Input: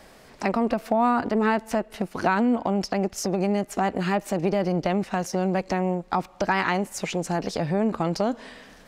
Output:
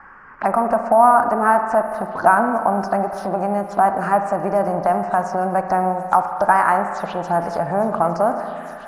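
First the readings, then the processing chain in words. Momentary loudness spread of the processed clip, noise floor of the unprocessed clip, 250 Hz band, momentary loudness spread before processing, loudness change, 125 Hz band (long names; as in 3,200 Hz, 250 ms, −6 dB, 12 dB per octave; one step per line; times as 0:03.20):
7 LU, −51 dBFS, −1.0 dB, 6 LU, +6.5 dB, −1.0 dB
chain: flat-topped bell 1,000 Hz +13 dB
in parallel at −9 dB: sample-rate reduction 11,000 Hz, jitter 0%
on the sum: low-pass that shuts in the quiet parts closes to 1,500 Hz, open at −10 dBFS
phaser swept by the level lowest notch 580 Hz, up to 3,600 Hz, full sweep at −14.5 dBFS
on a send: delay with a high-pass on its return 858 ms, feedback 64%, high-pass 3,400 Hz, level −12.5 dB
on the sum: spring reverb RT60 2 s, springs 35/59 ms, chirp 30 ms, DRR 6.5 dB
one half of a high-frequency compander encoder only
level −4.5 dB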